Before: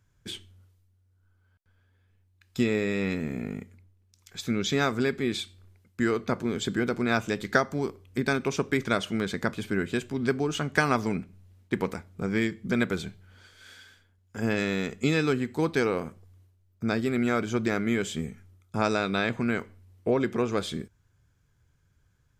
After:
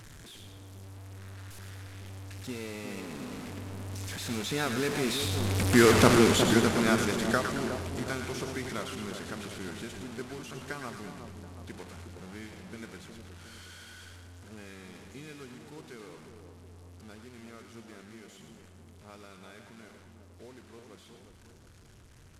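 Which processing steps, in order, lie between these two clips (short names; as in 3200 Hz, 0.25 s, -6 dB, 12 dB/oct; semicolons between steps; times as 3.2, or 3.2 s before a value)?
delta modulation 64 kbps, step -24.5 dBFS; Doppler pass-by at 5.98, 15 m/s, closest 4.8 m; split-band echo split 1100 Hz, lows 0.362 s, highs 0.111 s, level -6.5 dB; gain +7 dB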